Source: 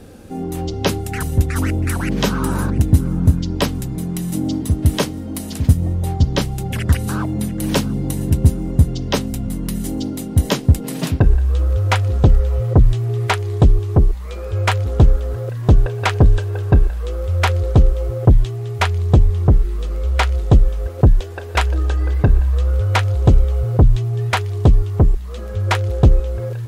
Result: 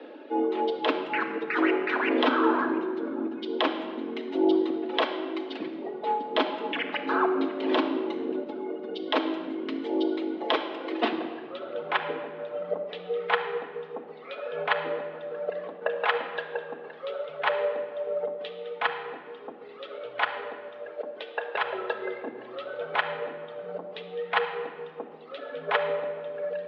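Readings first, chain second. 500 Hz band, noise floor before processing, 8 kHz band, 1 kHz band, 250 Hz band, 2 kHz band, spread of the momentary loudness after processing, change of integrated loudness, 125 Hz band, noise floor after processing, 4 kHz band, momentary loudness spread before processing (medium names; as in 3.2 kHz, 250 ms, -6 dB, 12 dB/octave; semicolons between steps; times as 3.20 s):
-2.5 dB, -28 dBFS, under -35 dB, -3.0 dB, -8.5 dB, -3.0 dB, 13 LU, -11.5 dB, under -40 dB, -44 dBFS, -6.0 dB, 8 LU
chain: reverb removal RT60 1.5 s; dynamic bell 790 Hz, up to +7 dB, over -34 dBFS, Q 1; compressor with a negative ratio -16 dBFS, ratio -0.5; simulated room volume 2700 m³, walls mixed, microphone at 1.3 m; mistuned SSB +62 Hz 250–3500 Hz; trim -4.5 dB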